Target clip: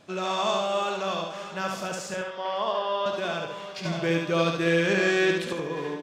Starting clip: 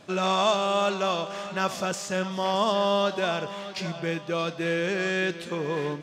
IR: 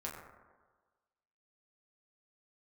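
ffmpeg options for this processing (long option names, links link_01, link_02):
-filter_complex "[0:a]asettb=1/sr,asplit=3[link_01][link_02][link_03];[link_01]atrim=end=2.144[link_04];[link_02]atrim=start=2.14:end=3.06,asetpts=PTS-STARTPTS,afade=type=in:duration=0.004:curve=qsin,afade=type=out:start_time=0.916:duration=0.004:curve=qsin,acrossover=split=340 4300:gain=0.178 1 0.0631[link_05][link_06][link_07];[link_05][link_06][link_07]amix=inputs=3:normalize=0[link_08];[link_03]atrim=start=3.056[link_09];[link_04][link_08]acrossfade=duration=0.004:curve1=hsin:curve2=qsin[link_10];[link_10][link_09]acrossfade=duration=0.004:curve1=qsin:curve2=hsin,asettb=1/sr,asplit=3[link_11][link_12][link_13];[link_11]atrim=end=3.854[link_14];[link_12]atrim=start=3.85:end=5.53,asetpts=PTS-STARTPTS,afade=type=in:duration=0.004:curve=qsin,afade=type=out:start_time=1.676:duration=0.004:curve=qsin,acontrast=77[link_15];[link_13]atrim=start=5.526[link_16];[link_14][link_15]acrossfade=duration=0.004:curve1=hsin:curve2=qsin[link_17];[link_17][link_16]acrossfade=duration=0.004:curve1=qsin:curve2=hsin,aecho=1:1:72|144|216|288:0.668|0.207|0.0642|0.0199,asplit=2[link_18][link_19];[1:a]atrim=start_sample=2205,adelay=57[link_20];[link_19][link_20]afir=irnorm=-1:irlink=0,volume=-13dB[link_21];[link_18][link_21]amix=inputs=2:normalize=0,volume=-4.5dB"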